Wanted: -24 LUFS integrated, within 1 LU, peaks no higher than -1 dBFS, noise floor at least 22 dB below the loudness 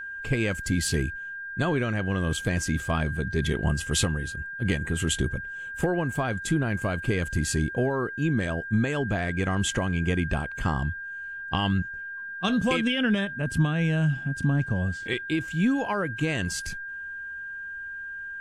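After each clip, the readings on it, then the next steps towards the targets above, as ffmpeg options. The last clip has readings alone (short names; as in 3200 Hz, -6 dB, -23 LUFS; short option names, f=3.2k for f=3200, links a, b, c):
steady tone 1600 Hz; tone level -34 dBFS; loudness -27.5 LUFS; peak -12.0 dBFS; loudness target -24.0 LUFS
-> -af "bandreject=f=1.6k:w=30"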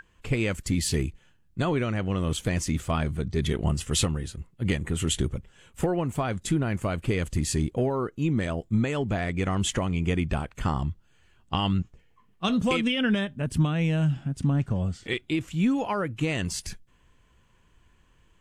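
steady tone none; loudness -27.5 LUFS; peak -12.0 dBFS; loudness target -24.0 LUFS
-> -af "volume=3.5dB"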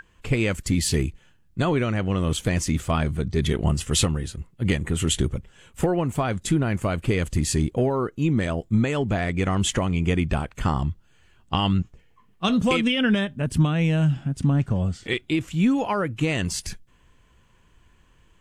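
loudness -24.0 LUFS; peak -8.5 dBFS; noise floor -58 dBFS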